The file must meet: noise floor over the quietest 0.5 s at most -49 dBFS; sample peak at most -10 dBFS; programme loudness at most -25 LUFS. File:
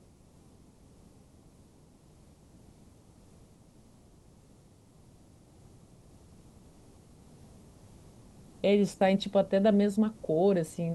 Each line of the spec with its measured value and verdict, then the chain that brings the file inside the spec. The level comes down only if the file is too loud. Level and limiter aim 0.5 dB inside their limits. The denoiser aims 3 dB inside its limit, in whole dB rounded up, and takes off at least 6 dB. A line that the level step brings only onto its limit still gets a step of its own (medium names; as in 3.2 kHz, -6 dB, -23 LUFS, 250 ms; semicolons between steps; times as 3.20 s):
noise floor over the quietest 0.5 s -58 dBFS: pass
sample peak -14.0 dBFS: pass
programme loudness -27.0 LUFS: pass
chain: none needed